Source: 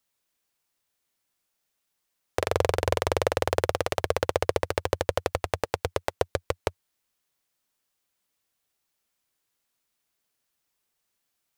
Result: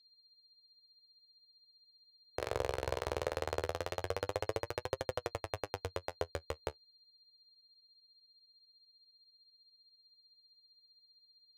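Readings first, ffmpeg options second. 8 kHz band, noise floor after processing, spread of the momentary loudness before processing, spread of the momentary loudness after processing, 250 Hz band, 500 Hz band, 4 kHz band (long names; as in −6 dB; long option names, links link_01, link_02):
−12.5 dB, −70 dBFS, 6 LU, 6 LU, −11.0 dB, −11.0 dB, −10.5 dB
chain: -af "adynamicsmooth=sensitivity=7:basefreq=880,aeval=exprs='val(0)+0.00251*sin(2*PI*4200*n/s)':channel_layout=same,flanger=delay=7.4:depth=9.1:regen=36:speed=0.2:shape=triangular,volume=-7.5dB"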